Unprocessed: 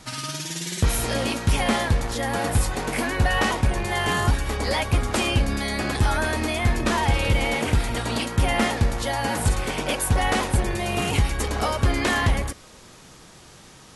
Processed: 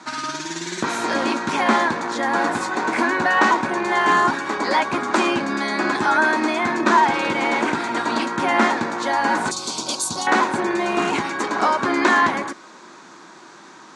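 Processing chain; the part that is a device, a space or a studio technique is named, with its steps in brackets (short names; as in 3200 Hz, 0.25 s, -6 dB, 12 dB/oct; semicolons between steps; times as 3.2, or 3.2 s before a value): television speaker (speaker cabinet 210–6800 Hz, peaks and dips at 340 Hz +7 dB, 480 Hz -6 dB, 1000 Hz +9 dB, 1500 Hz +7 dB, 3000 Hz -7 dB, 5200 Hz -5 dB); 9.51–10.27 EQ curve 130 Hz 0 dB, 330 Hz -9 dB, 1200 Hz -9 dB, 1800 Hz -24 dB, 4300 Hz +12 dB; gain +3.5 dB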